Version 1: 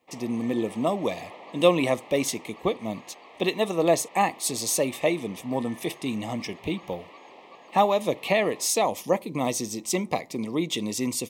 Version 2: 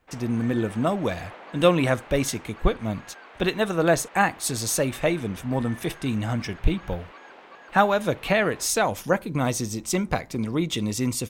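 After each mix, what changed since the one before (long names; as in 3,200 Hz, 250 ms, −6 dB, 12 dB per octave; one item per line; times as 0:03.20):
speech: remove high-pass filter 220 Hz 12 dB per octave
master: remove Butterworth band-reject 1,500 Hz, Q 2.1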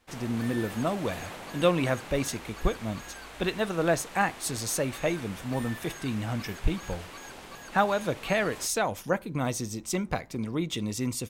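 speech −5.0 dB
background: remove band-pass filter 350–2,400 Hz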